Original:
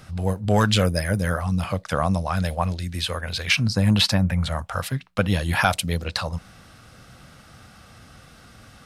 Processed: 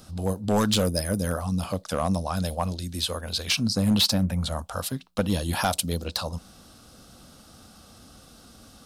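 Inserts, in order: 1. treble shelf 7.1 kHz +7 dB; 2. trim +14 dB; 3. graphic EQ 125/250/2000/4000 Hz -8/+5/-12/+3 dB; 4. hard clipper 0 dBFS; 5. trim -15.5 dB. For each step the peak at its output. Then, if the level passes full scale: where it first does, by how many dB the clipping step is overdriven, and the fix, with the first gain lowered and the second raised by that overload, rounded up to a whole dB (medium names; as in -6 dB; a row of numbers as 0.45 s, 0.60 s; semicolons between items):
-5.5 dBFS, +8.5 dBFS, +9.5 dBFS, 0.0 dBFS, -15.5 dBFS; step 2, 9.5 dB; step 2 +4 dB, step 5 -5.5 dB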